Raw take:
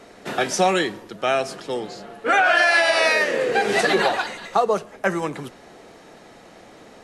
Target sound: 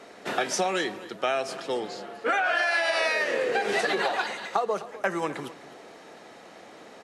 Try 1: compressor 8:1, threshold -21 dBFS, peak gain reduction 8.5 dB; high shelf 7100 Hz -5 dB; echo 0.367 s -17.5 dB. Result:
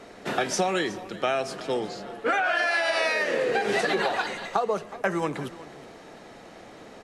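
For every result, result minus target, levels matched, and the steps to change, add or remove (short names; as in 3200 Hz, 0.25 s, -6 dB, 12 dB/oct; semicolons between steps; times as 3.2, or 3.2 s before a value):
echo 0.112 s late; 250 Hz band +2.5 dB
change: echo 0.255 s -17.5 dB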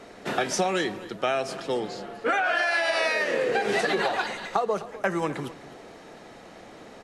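250 Hz band +2.5 dB
add after compressor: HPF 310 Hz 6 dB/oct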